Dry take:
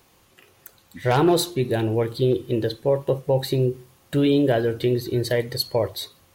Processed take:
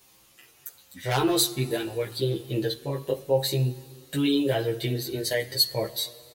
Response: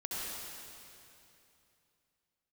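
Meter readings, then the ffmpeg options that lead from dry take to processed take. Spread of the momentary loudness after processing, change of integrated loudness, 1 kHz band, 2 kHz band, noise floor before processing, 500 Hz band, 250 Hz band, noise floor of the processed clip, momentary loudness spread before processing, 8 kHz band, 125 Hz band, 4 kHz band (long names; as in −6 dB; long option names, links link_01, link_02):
12 LU, −4.0 dB, −5.5 dB, −2.0 dB, −59 dBFS, −6.5 dB, −5.0 dB, −58 dBFS, 7 LU, +4.5 dB, −4.5 dB, +2.5 dB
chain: -filter_complex "[0:a]highshelf=frequency=2400:gain=11.5,asplit=2[link_01][link_02];[link_02]adelay=15,volume=-3dB[link_03];[link_01][link_03]amix=inputs=2:normalize=0,asplit=2[link_04][link_05];[1:a]atrim=start_sample=2205[link_06];[link_05][link_06]afir=irnorm=-1:irlink=0,volume=-21dB[link_07];[link_04][link_07]amix=inputs=2:normalize=0,asplit=2[link_08][link_09];[link_09]adelay=7.3,afreqshift=0.9[link_10];[link_08][link_10]amix=inputs=2:normalize=1,volume=-5.5dB"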